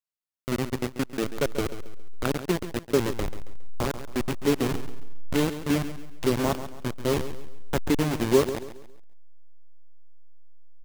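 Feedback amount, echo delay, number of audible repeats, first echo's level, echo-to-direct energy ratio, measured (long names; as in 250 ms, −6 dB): 36%, 137 ms, 3, −12.0 dB, −11.5 dB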